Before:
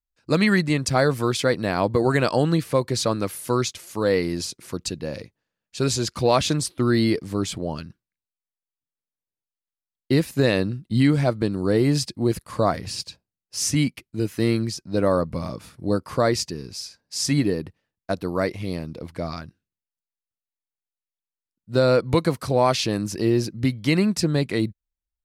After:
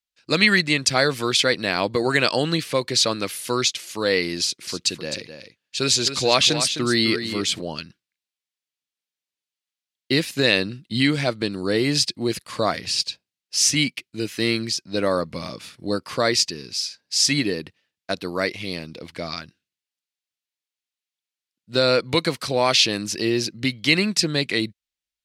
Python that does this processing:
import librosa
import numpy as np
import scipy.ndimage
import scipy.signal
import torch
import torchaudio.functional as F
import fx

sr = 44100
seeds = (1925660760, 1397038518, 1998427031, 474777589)

y = fx.echo_single(x, sr, ms=259, db=-9.5, at=(4.41, 7.61))
y = fx.weighting(y, sr, curve='D')
y = y * 10.0 ** (-1.0 / 20.0)